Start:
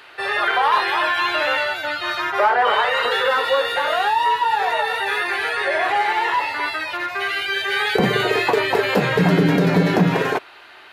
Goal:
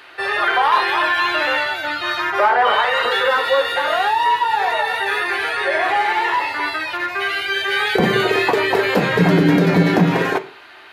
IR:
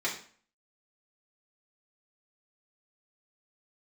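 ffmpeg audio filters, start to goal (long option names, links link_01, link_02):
-filter_complex "[0:a]asplit=2[link_01][link_02];[1:a]atrim=start_sample=2205,lowshelf=frequency=240:gain=11[link_03];[link_02][link_03]afir=irnorm=-1:irlink=0,volume=-16dB[link_04];[link_01][link_04]amix=inputs=2:normalize=0"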